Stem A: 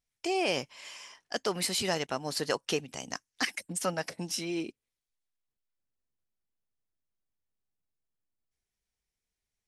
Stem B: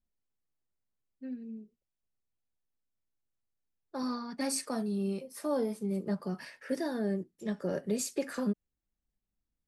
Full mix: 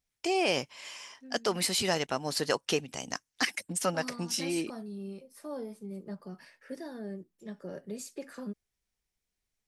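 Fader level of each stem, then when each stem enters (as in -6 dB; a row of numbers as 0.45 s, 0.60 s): +1.5 dB, -8.0 dB; 0.00 s, 0.00 s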